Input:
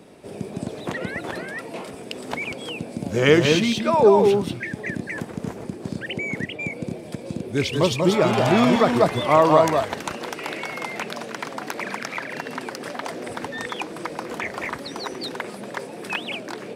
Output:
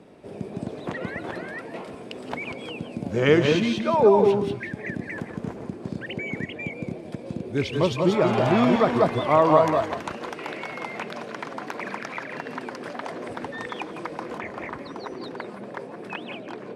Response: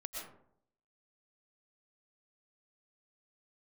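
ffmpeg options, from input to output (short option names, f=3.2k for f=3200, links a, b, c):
-filter_complex "[0:a]asetnsamples=n=441:p=0,asendcmd='14.38 lowpass f 1200',lowpass=f=2.5k:p=1[a];[1:a]atrim=start_sample=2205,atrim=end_sample=4410,asetrate=24696,aresample=44100[b];[a][b]afir=irnorm=-1:irlink=0"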